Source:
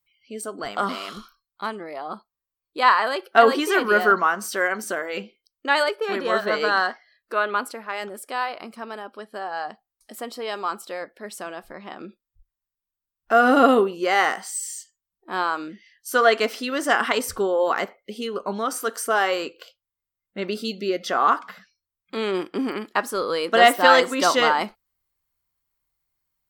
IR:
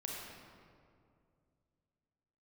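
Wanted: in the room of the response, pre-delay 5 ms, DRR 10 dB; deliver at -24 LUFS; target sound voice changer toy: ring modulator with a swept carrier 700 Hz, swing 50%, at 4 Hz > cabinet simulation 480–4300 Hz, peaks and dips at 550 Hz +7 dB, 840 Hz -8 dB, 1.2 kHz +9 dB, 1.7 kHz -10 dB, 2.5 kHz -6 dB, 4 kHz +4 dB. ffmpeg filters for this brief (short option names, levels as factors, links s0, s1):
-filter_complex "[0:a]asplit=2[s0][s1];[1:a]atrim=start_sample=2205,adelay=5[s2];[s1][s2]afir=irnorm=-1:irlink=0,volume=0.316[s3];[s0][s3]amix=inputs=2:normalize=0,aeval=exprs='val(0)*sin(2*PI*700*n/s+700*0.5/4*sin(2*PI*4*n/s))':c=same,highpass=480,equalizer=f=550:t=q:w=4:g=7,equalizer=f=840:t=q:w=4:g=-8,equalizer=f=1200:t=q:w=4:g=9,equalizer=f=1700:t=q:w=4:g=-10,equalizer=f=2500:t=q:w=4:g=-6,equalizer=f=4000:t=q:w=4:g=4,lowpass=f=4300:w=0.5412,lowpass=f=4300:w=1.3066,volume=1.19"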